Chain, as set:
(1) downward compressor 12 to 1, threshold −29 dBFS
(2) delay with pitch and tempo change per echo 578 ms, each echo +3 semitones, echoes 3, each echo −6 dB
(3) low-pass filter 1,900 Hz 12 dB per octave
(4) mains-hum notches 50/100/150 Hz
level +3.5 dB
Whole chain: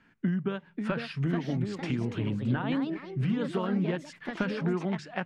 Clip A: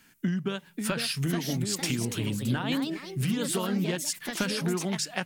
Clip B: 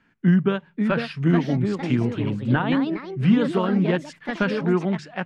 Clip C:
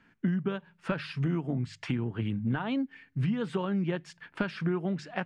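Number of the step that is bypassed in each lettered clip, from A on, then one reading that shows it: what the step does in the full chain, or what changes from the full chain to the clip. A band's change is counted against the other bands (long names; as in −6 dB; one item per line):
3, change in momentary loudness spread −1 LU
1, average gain reduction 6.5 dB
2, change in integrated loudness −1.0 LU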